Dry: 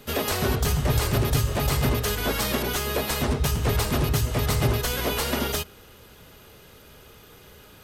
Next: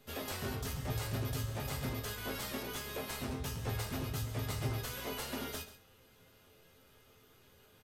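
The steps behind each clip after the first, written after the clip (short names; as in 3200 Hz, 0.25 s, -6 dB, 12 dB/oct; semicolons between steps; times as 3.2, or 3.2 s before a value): resonator bank F2 major, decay 0.25 s; echo 0.135 s -14.5 dB; gain -3 dB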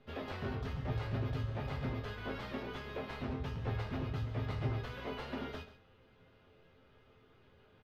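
air absorption 320 m; gain +1 dB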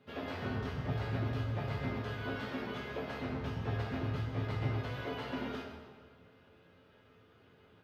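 HPF 83 Hz; plate-style reverb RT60 1.7 s, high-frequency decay 0.7×, DRR 1 dB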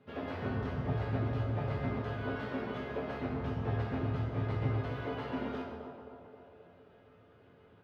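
high shelf 3000 Hz -12 dB; narrowing echo 0.265 s, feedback 66%, band-pass 590 Hz, level -7 dB; gain +2 dB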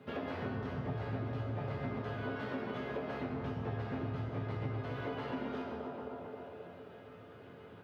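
HPF 94 Hz; compressor 3:1, threshold -47 dBFS, peak gain reduction 14 dB; gain +8 dB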